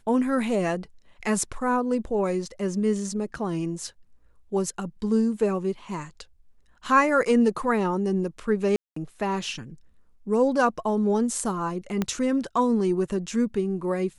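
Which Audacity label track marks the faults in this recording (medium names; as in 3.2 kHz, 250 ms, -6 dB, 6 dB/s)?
8.760000	8.960000	dropout 204 ms
12.020000	12.020000	pop -12 dBFS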